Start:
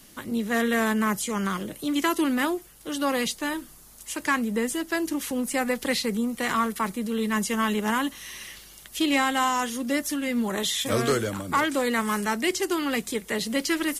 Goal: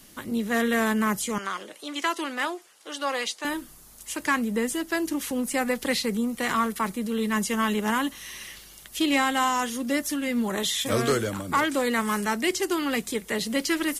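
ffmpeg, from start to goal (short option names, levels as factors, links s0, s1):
-filter_complex "[0:a]asettb=1/sr,asplit=3[s0][s1][s2];[s0]atrim=end=1.384[s3];[s1]atrim=start=1.38:end=3.45,asetpts=PTS-STARTPTS,afade=t=in:d=0.004:c=qsin,afade=t=out:st=2.066:d=0.004:c=qsin,highpass=530,lowpass=7700[s4];[s2]atrim=start=3.446[s5];[s3][s4]acrossfade=d=0.004:c1=hsin:c2=qsin[s6];[s6][s5]acrossfade=d=0.004:c1=qsin:c2=hsin"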